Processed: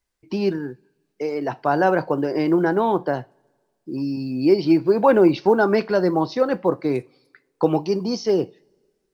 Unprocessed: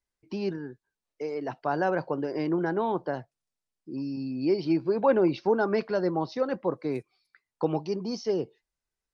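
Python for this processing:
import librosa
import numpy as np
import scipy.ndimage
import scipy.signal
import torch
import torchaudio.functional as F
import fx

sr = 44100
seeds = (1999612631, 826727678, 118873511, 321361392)

y = fx.quant_float(x, sr, bits=6)
y = fx.rev_double_slope(y, sr, seeds[0], early_s=0.26, late_s=1.7, knee_db=-27, drr_db=13.5)
y = y * librosa.db_to_amplitude(8.0)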